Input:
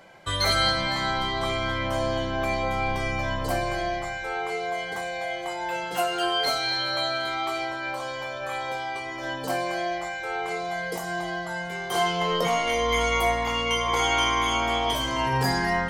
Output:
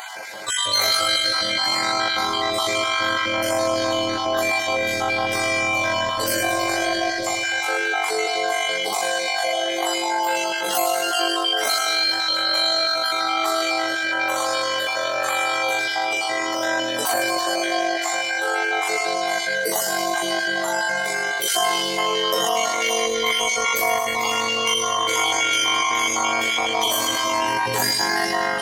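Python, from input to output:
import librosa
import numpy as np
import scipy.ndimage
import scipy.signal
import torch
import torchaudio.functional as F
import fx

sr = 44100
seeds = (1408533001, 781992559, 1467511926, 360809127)

p1 = fx.spec_dropout(x, sr, seeds[0], share_pct=22)
p2 = fx.highpass(p1, sr, hz=190.0, slope=6)
p3 = fx.bass_treble(p2, sr, bass_db=-11, treble_db=9)
p4 = fx.rider(p3, sr, range_db=10, speed_s=0.5)
p5 = p3 + (p4 * librosa.db_to_amplitude(-1.5))
p6 = fx.stretch_grains(p5, sr, factor=1.8, grain_ms=42.0)
p7 = p6 + fx.echo_feedback(p6, sr, ms=107, feedback_pct=60, wet_db=-11, dry=0)
p8 = fx.env_flatten(p7, sr, amount_pct=50)
y = p8 * librosa.db_to_amplitude(-2.0)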